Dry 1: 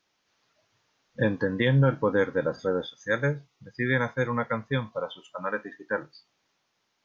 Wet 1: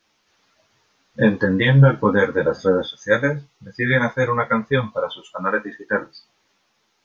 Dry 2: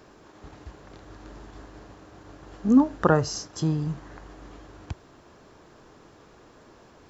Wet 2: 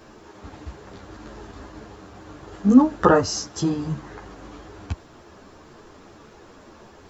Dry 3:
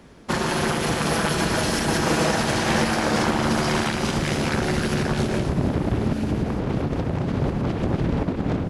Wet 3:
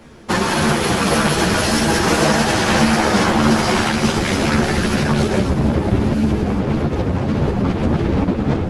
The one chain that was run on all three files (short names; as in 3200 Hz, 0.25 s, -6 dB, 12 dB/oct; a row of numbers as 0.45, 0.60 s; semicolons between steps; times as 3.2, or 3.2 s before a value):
ensemble effect; normalise peaks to -2 dBFS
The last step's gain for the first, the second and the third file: +11.5, +8.5, +9.0 dB